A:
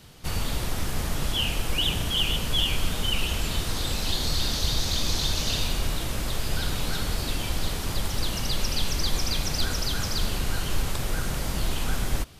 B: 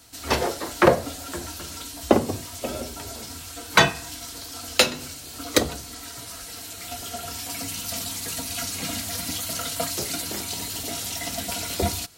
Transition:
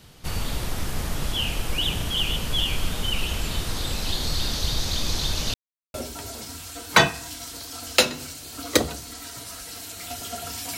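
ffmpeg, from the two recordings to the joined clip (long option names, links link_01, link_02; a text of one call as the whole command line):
ffmpeg -i cue0.wav -i cue1.wav -filter_complex "[0:a]apad=whole_dur=10.77,atrim=end=10.77,asplit=2[link_01][link_02];[link_01]atrim=end=5.54,asetpts=PTS-STARTPTS,afade=type=out:start_time=5.536:duration=0.004:curve=hsin[link_03];[link_02]atrim=start=5.54:end=5.94,asetpts=PTS-STARTPTS,volume=0[link_04];[1:a]atrim=start=2.75:end=7.58,asetpts=PTS-STARTPTS,afade=type=in:duration=0.004:curve=hsin[link_05];[link_03][link_04][link_05]concat=n=3:v=0:a=1" out.wav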